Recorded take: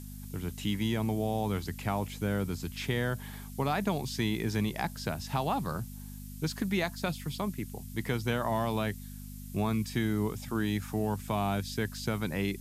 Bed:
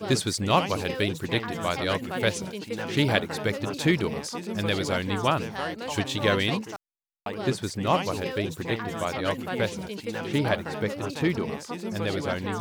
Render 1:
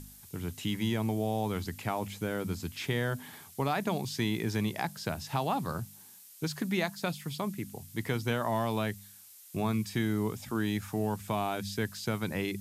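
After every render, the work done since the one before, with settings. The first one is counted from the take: de-hum 50 Hz, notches 5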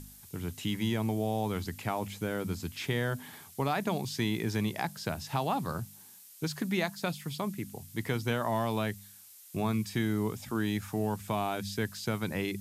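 no audible change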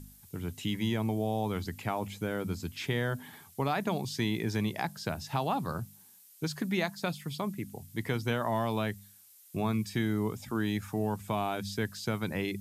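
noise reduction 6 dB, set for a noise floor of -53 dBFS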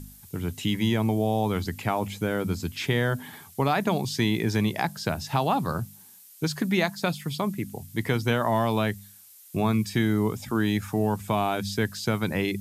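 trim +6.5 dB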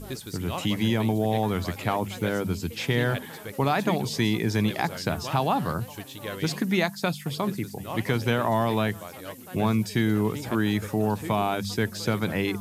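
add bed -12 dB

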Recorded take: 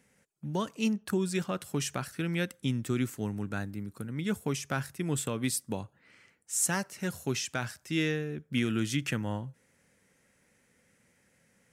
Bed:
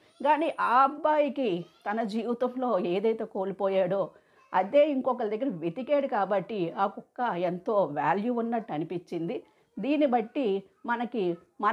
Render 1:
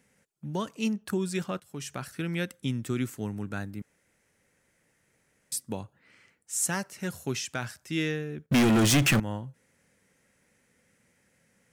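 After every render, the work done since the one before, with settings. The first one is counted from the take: 1.60–2.12 s: fade in, from -16.5 dB; 3.82–5.52 s: room tone; 8.46–9.20 s: waveshaping leveller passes 5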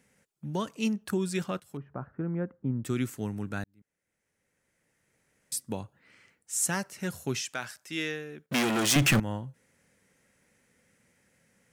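1.77–2.85 s: low-pass 1.2 kHz 24 dB/octave; 3.64–5.69 s: fade in; 7.41–8.96 s: high-pass 520 Hz 6 dB/octave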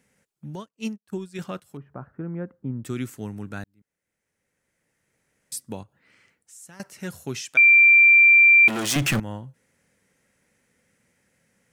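0.55–1.39 s: upward expansion 2.5:1, over -49 dBFS; 5.83–6.80 s: compression 2.5:1, threshold -52 dBFS; 7.57–8.68 s: bleep 2.36 kHz -10 dBFS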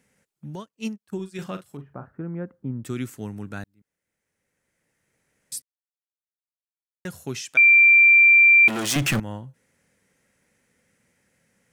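1.15–2.06 s: doubling 42 ms -10 dB; 5.62–7.05 s: mute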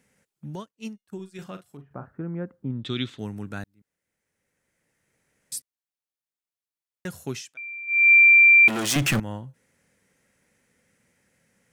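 0.71–1.91 s: feedback comb 710 Hz, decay 0.26 s, mix 50%; 2.70–3.19 s: resonant low-pass 3.6 kHz, resonance Q 9.4; 7.30–8.12 s: dip -23 dB, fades 0.25 s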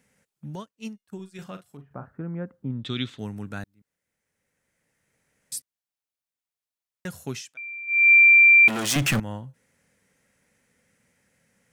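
peaking EQ 350 Hz -4 dB 0.34 oct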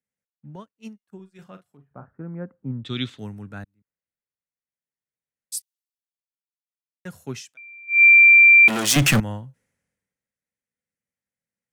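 peak limiter -13.5 dBFS, peak gain reduction 3.5 dB; three bands expanded up and down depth 70%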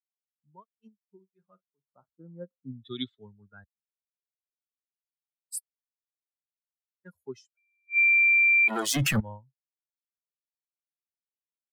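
expander on every frequency bin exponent 2; peak limiter -17 dBFS, peak gain reduction 10 dB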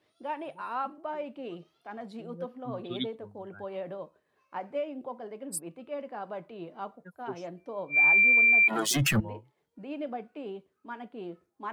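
add bed -11.5 dB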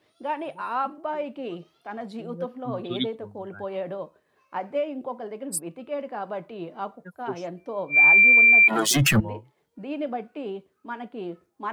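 trim +6 dB

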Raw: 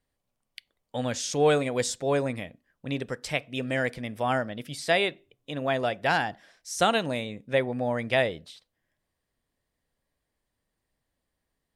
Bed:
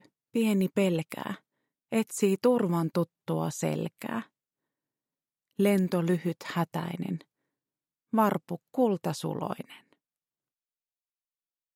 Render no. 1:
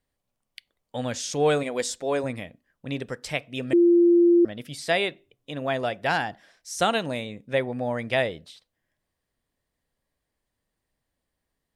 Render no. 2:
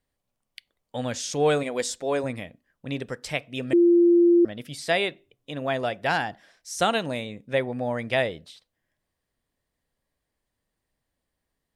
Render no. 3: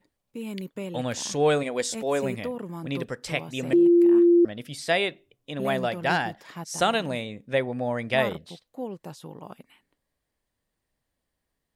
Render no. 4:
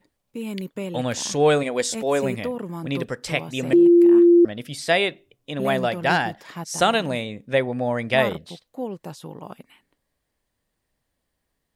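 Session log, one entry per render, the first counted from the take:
1.63–2.24 s: peaking EQ 120 Hz -14.5 dB 0.65 oct; 3.73–4.45 s: bleep 345 Hz -13.5 dBFS
no audible change
add bed -9 dB
trim +4 dB

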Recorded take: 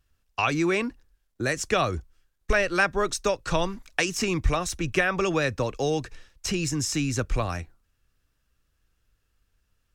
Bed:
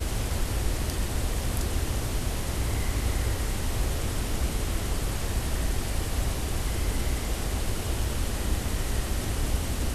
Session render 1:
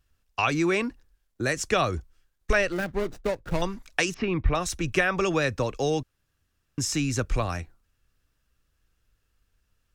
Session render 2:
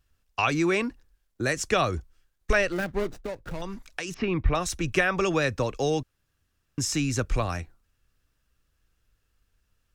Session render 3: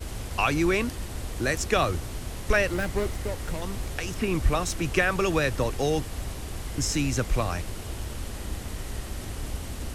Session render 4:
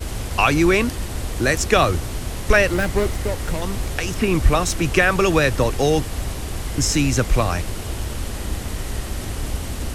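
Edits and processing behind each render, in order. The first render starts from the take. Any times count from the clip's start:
2.72–3.62 s: median filter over 41 samples; 4.14–4.55 s: Bessel low-pass 2.3 kHz, order 6; 6.03–6.78 s: room tone
3.12–4.11 s: compression 4:1, threshold -30 dBFS
add bed -6 dB
trim +7.5 dB; peak limiter -2 dBFS, peak gain reduction 1.5 dB

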